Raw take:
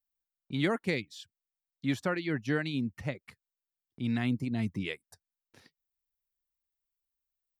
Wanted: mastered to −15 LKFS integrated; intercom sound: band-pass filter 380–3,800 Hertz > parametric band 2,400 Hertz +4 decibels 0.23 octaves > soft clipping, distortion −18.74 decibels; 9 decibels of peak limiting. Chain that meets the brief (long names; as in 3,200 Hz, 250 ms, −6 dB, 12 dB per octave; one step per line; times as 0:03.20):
brickwall limiter −25 dBFS
band-pass filter 380–3,800 Hz
parametric band 2,400 Hz +4 dB 0.23 octaves
soft clipping −28 dBFS
level +27 dB